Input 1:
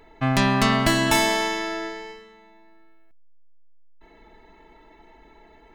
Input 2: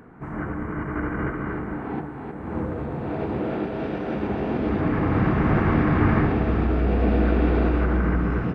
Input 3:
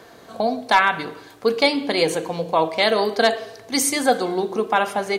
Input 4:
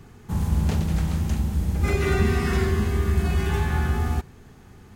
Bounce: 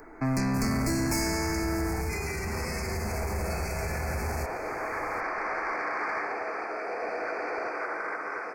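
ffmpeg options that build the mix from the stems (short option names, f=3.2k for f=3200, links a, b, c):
-filter_complex "[0:a]equalizer=f=310:t=o:w=0.77:g=9,volume=-0.5dB[a];[1:a]highpass=f=510:w=0.5412,highpass=f=510:w=1.3066,highshelf=f=2.5k:g=11,volume=-2dB[b];[3:a]highshelf=f=1.9k:t=q:w=1.5:g=12,adelay=250,volume=-2.5dB,alimiter=limit=-22dB:level=0:latency=1:release=124,volume=0dB[c];[a][b][c]amix=inputs=3:normalize=0,acrossover=split=200|3000[d][e][f];[e]acompressor=threshold=-26dB:ratio=6[g];[d][g][f]amix=inputs=3:normalize=0,asoftclip=type=tanh:threshold=-23dB,asuperstop=centerf=3300:order=12:qfactor=1.7"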